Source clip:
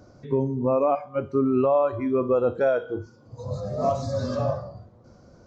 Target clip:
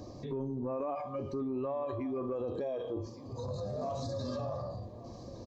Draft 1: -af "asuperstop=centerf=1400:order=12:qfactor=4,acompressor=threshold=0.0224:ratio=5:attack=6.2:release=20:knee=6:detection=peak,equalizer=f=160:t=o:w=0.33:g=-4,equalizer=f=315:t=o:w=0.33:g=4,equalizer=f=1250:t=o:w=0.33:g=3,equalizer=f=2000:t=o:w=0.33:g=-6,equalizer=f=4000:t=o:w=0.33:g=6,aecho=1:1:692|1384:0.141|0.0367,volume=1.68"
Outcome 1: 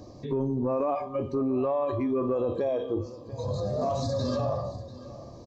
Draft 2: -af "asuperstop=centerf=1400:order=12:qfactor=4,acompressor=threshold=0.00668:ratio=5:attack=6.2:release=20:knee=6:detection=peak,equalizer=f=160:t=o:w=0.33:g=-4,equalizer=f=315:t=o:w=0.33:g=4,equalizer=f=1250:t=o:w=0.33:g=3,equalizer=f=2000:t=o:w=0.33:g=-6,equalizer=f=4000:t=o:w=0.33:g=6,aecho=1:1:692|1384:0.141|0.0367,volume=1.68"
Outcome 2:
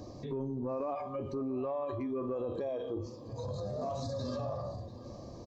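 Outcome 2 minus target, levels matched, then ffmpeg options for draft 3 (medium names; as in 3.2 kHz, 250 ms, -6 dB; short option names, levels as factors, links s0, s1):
echo 472 ms early
-af "asuperstop=centerf=1400:order=12:qfactor=4,acompressor=threshold=0.00668:ratio=5:attack=6.2:release=20:knee=6:detection=peak,equalizer=f=160:t=o:w=0.33:g=-4,equalizer=f=315:t=o:w=0.33:g=4,equalizer=f=1250:t=o:w=0.33:g=3,equalizer=f=2000:t=o:w=0.33:g=-6,equalizer=f=4000:t=o:w=0.33:g=6,aecho=1:1:1164|2328:0.141|0.0367,volume=1.68"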